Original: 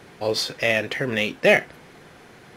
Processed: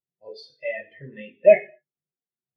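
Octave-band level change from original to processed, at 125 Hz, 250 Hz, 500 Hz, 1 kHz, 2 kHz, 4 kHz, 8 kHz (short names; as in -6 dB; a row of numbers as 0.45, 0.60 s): -12.5 dB, -11.5 dB, +3.0 dB, n/a, -11.5 dB, under -20 dB, under -30 dB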